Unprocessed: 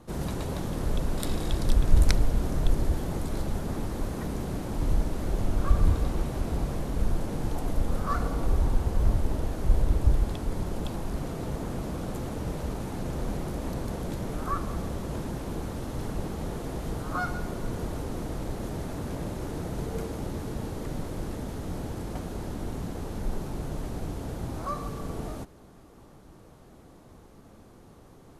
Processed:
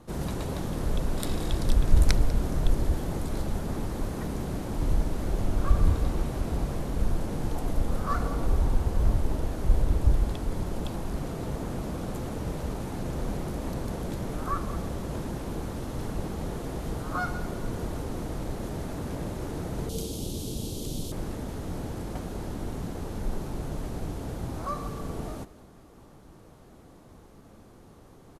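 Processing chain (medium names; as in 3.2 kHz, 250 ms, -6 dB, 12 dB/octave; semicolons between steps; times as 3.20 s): 19.89–21.12 s: FFT filter 390 Hz 0 dB, 1.9 kHz -17 dB, 3.2 kHz +10 dB; on a send: delay 195 ms -18.5 dB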